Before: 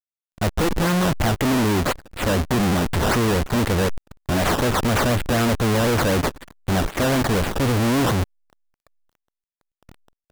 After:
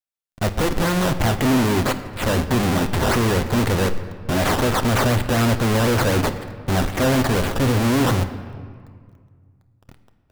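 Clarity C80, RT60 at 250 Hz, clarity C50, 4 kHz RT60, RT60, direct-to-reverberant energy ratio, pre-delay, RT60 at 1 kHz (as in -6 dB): 12.5 dB, 2.3 s, 11.5 dB, 1.2 s, 1.9 s, 8.0 dB, 8 ms, 1.9 s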